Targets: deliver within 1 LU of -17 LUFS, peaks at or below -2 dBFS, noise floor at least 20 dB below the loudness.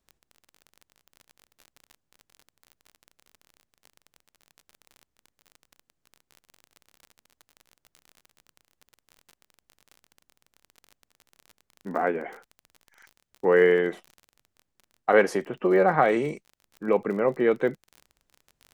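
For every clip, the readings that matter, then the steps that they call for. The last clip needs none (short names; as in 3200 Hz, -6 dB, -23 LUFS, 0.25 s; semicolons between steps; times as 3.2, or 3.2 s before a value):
ticks 34/s; loudness -24.0 LUFS; peak -6.0 dBFS; loudness target -17.0 LUFS
-> de-click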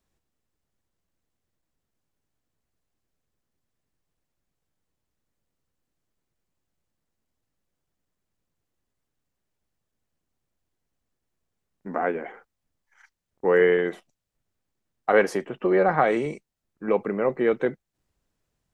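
ticks 0/s; loudness -24.0 LUFS; peak -6.0 dBFS; loudness target -17.0 LUFS
-> gain +7 dB; limiter -2 dBFS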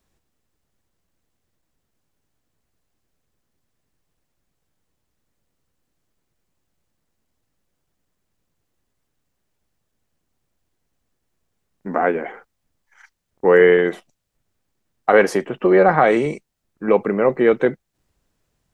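loudness -17.0 LUFS; peak -2.0 dBFS; noise floor -75 dBFS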